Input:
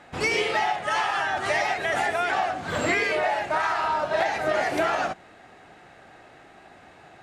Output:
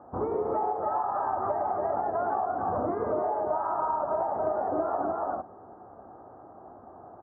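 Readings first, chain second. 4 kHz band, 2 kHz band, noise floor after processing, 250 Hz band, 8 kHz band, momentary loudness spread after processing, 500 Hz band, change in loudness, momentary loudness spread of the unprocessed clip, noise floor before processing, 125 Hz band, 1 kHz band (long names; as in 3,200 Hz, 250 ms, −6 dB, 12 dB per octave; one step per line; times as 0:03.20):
below −40 dB, −23.0 dB, −50 dBFS, −1.5 dB, below −40 dB, 20 LU, −1.5 dB, −4.5 dB, 3 LU, −51 dBFS, −4.0 dB, −2.0 dB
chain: Butterworth low-pass 1,200 Hz 48 dB per octave
on a send: single-tap delay 285 ms −4.5 dB
on the sum: downward compressor, threshold −27 dBFS, peak gain reduction 8 dB
high-pass filter 59 Hz
parametric band 150 Hz −11.5 dB 0.3 octaves
level +2 dB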